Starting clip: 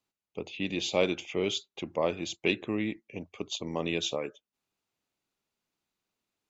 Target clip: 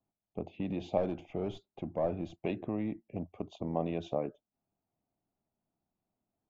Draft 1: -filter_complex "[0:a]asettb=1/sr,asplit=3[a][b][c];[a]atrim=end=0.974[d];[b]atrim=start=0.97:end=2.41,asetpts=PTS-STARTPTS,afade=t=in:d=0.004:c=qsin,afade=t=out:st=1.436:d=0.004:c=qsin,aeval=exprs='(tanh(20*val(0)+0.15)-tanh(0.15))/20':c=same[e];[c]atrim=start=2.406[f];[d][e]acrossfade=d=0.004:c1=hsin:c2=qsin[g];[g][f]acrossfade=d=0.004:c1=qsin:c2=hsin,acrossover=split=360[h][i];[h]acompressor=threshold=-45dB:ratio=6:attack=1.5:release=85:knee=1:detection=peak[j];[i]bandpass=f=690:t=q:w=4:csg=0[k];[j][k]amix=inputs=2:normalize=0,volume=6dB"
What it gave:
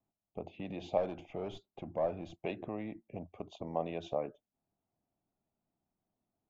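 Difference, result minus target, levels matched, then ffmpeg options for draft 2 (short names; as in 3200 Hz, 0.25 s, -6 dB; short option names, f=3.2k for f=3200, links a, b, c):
compressor: peak gain reduction +7.5 dB
-filter_complex "[0:a]asettb=1/sr,asplit=3[a][b][c];[a]atrim=end=0.974[d];[b]atrim=start=0.97:end=2.41,asetpts=PTS-STARTPTS,afade=t=in:d=0.004:c=qsin,afade=t=out:st=1.436:d=0.004:c=qsin,aeval=exprs='(tanh(20*val(0)+0.15)-tanh(0.15))/20':c=same[e];[c]atrim=start=2.406[f];[d][e]acrossfade=d=0.004:c1=hsin:c2=qsin[g];[g][f]acrossfade=d=0.004:c1=qsin:c2=hsin,acrossover=split=360[h][i];[h]acompressor=threshold=-36dB:ratio=6:attack=1.5:release=85:knee=1:detection=peak[j];[i]bandpass=f=690:t=q:w=4:csg=0[k];[j][k]amix=inputs=2:normalize=0,volume=6dB"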